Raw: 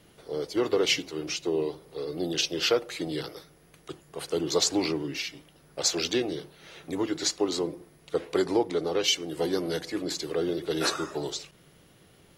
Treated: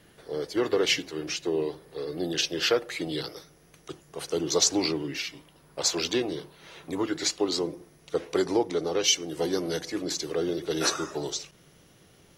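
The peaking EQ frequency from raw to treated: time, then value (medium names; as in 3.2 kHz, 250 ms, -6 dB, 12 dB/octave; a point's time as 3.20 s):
peaking EQ +8 dB 0.25 oct
2.87 s 1.7 kHz
3.36 s 5.9 kHz
4.79 s 5.9 kHz
5.32 s 1 kHz
6.96 s 1 kHz
7.62 s 5.9 kHz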